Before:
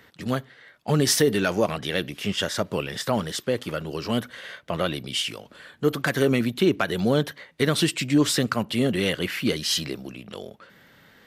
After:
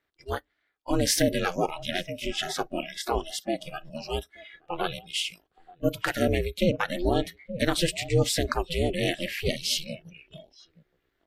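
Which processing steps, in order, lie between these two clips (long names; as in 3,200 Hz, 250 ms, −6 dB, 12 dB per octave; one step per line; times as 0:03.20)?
slap from a distant wall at 150 metres, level −11 dB
ring modulation 170 Hz
noise reduction from a noise print of the clip's start 22 dB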